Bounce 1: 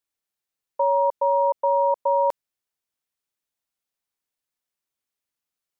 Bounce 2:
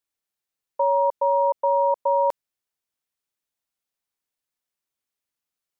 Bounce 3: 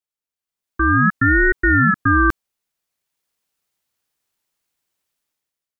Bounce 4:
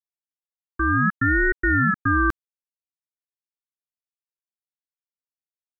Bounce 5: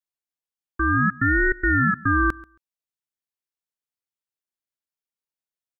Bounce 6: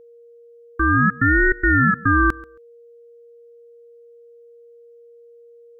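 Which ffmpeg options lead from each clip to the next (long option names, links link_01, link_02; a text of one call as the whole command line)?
ffmpeg -i in.wav -af anull out.wav
ffmpeg -i in.wav -af "dynaudnorm=framelen=190:gausssize=7:maxgain=15.5dB,aeval=exprs='val(0)*sin(2*PI*770*n/s+770*0.2/0.66*sin(2*PI*0.66*n/s))':channel_layout=same,volume=-3dB" out.wav
ffmpeg -i in.wav -af "acrusher=bits=9:mix=0:aa=0.000001,volume=-5dB" out.wav
ffmpeg -i in.wav -af "aecho=1:1:136|272:0.0794|0.0119" out.wav
ffmpeg -i in.wav -af "aeval=exprs='val(0)+0.00398*sin(2*PI*470*n/s)':channel_layout=same,volume=3.5dB" out.wav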